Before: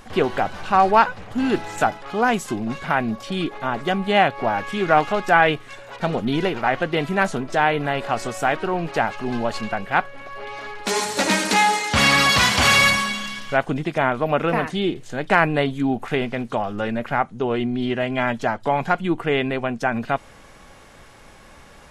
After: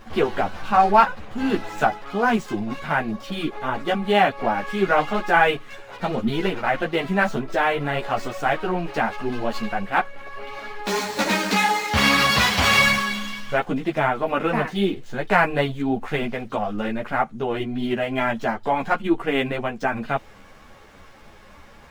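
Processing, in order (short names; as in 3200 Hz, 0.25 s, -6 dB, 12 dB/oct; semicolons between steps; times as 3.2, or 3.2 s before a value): median filter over 5 samples; ensemble effect; gain +2 dB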